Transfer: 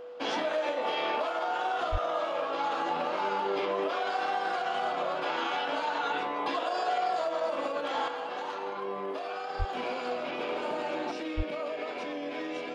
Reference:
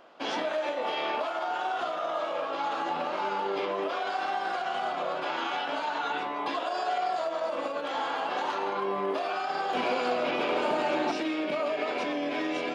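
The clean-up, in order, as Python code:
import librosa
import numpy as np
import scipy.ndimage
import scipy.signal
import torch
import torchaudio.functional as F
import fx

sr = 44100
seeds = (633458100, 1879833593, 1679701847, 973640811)

y = fx.notch(x, sr, hz=490.0, q=30.0)
y = fx.highpass(y, sr, hz=140.0, slope=24, at=(1.91, 2.03), fade=0.02)
y = fx.highpass(y, sr, hz=140.0, slope=24, at=(9.58, 9.7), fade=0.02)
y = fx.highpass(y, sr, hz=140.0, slope=24, at=(11.36, 11.48), fade=0.02)
y = fx.gain(y, sr, db=fx.steps((0.0, 0.0), (8.08, 6.0)))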